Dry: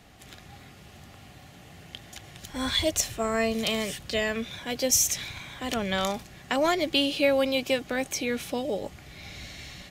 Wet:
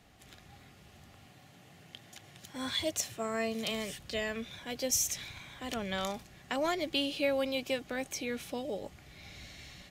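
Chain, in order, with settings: 1.26–3.71 s: high-pass 96 Hz 24 dB/octave; trim -7.5 dB

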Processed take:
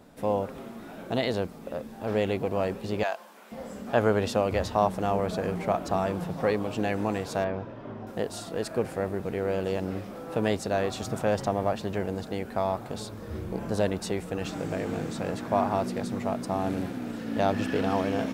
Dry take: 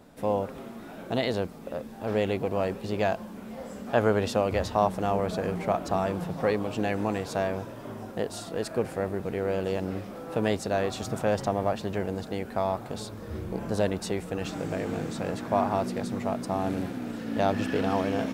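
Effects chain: 3.03–3.52 s: high-pass 720 Hz 12 dB/octave; 7.44–8.07 s: distance through air 250 m

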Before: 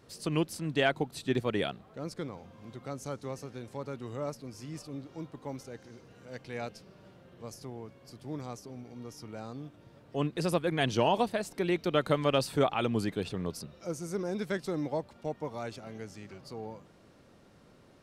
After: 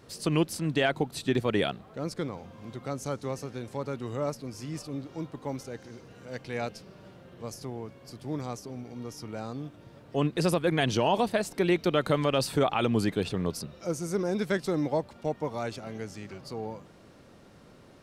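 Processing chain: peak limiter -19.5 dBFS, peak gain reduction 6 dB; trim +5 dB

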